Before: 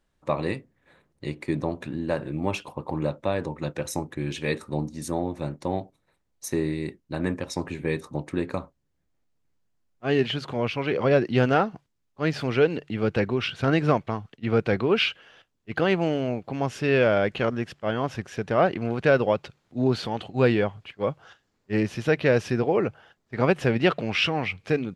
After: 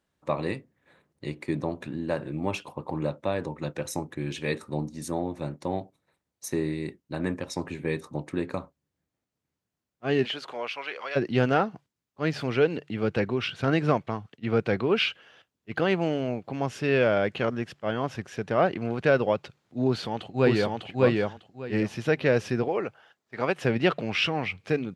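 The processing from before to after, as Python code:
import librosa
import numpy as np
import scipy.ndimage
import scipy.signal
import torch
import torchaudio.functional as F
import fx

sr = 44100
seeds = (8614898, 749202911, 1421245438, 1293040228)

y = fx.highpass(x, sr, hz=fx.line((10.24, 330.0), (11.15, 1400.0)), slope=12, at=(10.24, 11.15), fade=0.02)
y = fx.echo_throw(y, sr, start_s=19.86, length_s=0.91, ms=600, feedback_pct=20, wet_db=-1.0)
y = fx.low_shelf(y, sr, hz=290.0, db=-11.5, at=(22.68, 23.65))
y = scipy.signal.sosfilt(scipy.signal.butter(2, 80.0, 'highpass', fs=sr, output='sos'), y)
y = F.gain(torch.from_numpy(y), -2.0).numpy()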